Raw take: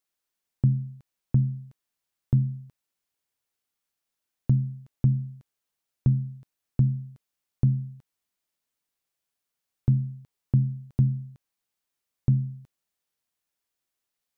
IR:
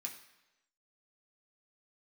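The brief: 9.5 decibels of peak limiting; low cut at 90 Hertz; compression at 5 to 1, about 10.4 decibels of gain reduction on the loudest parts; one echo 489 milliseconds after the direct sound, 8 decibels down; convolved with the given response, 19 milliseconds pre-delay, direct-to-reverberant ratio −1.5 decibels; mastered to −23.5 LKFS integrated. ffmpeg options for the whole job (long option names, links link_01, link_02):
-filter_complex "[0:a]highpass=90,acompressor=threshold=-29dB:ratio=5,alimiter=level_in=3.5dB:limit=-24dB:level=0:latency=1,volume=-3.5dB,aecho=1:1:489:0.398,asplit=2[link_01][link_02];[1:a]atrim=start_sample=2205,adelay=19[link_03];[link_02][link_03]afir=irnorm=-1:irlink=0,volume=4dB[link_04];[link_01][link_04]amix=inputs=2:normalize=0,volume=12.5dB"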